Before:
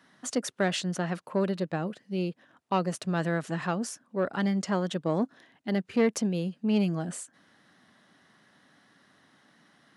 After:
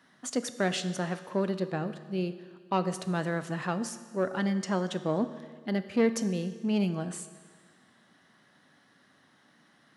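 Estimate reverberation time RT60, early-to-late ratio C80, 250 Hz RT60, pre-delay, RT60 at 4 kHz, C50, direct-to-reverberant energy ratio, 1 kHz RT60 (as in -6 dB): 1.7 s, 13.5 dB, 1.7 s, 8 ms, 1.6 s, 12.5 dB, 10.5 dB, 1.7 s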